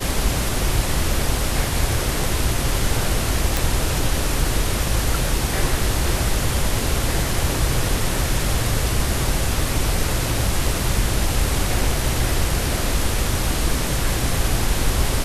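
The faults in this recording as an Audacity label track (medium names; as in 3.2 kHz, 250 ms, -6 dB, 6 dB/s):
3.570000	3.570000	pop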